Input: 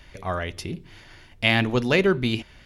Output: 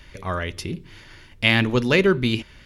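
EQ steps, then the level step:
parametric band 720 Hz −8.5 dB 0.32 octaves
+2.5 dB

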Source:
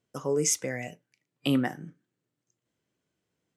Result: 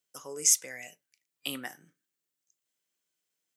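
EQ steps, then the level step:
spectral tilt +4.5 dB per octave
−8.5 dB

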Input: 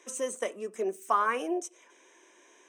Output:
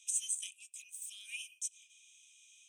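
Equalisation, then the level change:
Chebyshev high-pass with heavy ripple 2,400 Hz, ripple 9 dB
+6.5 dB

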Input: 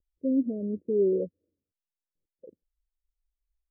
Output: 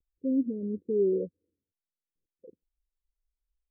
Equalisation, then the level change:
Butterworth low-pass 540 Hz 72 dB per octave
−1.5 dB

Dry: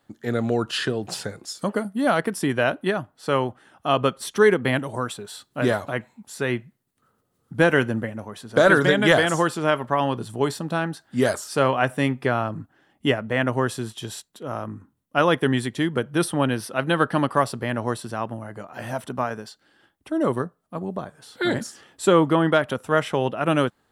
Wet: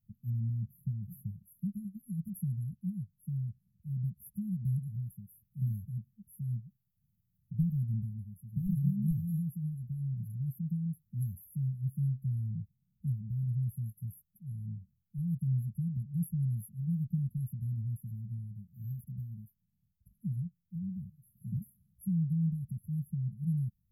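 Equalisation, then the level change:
linear-phase brick-wall band-stop 210–11,000 Hz
low-shelf EQ 85 Hz +10.5 dB
−5.0 dB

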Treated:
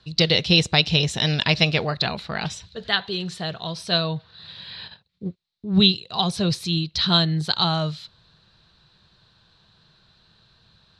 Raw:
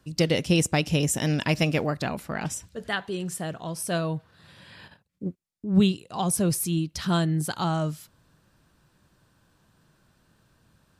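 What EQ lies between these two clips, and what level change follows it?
low-pass with resonance 4,000 Hz, resonance Q 7.5
parametric band 280 Hz −12 dB 0.39 octaves
notch filter 560 Hz, Q 12
+3.0 dB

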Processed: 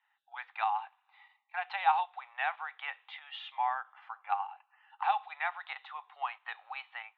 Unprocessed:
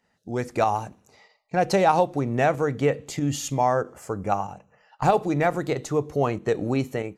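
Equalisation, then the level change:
Chebyshev band-pass filter 790–3,700 Hz, order 5
dynamic equaliser 1,200 Hz, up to −3 dB, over −37 dBFS, Q 1.3
−3.0 dB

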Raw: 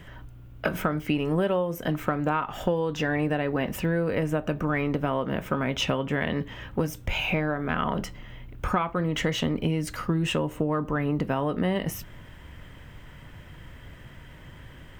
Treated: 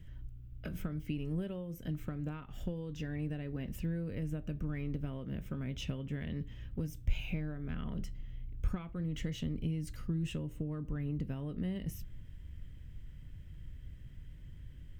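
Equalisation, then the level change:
guitar amp tone stack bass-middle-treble 10-0-1
+6.5 dB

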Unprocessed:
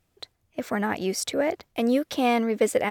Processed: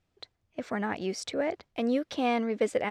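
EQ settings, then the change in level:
low-pass filter 5,800 Hz 12 dB per octave
−5.0 dB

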